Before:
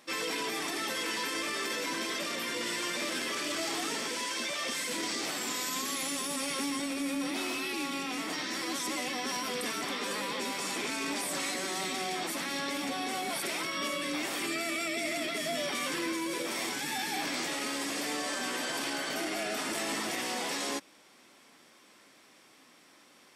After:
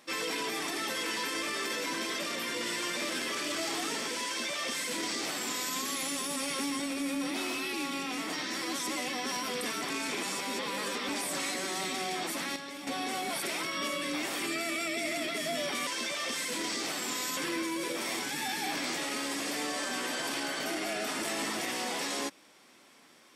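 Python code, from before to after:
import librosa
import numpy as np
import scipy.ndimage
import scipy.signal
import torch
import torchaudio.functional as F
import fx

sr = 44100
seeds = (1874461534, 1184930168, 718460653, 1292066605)

y = fx.edit(x, sr, fx.duplicate(start_s=4.26, length_s=1.5, to_s=15.87),
    fx.reverse_span(start_s=9.9, length_s=1.19),
    fx.clip_gain(start_s=12.56, length_s=0.31, db=-8.0), tone=tone)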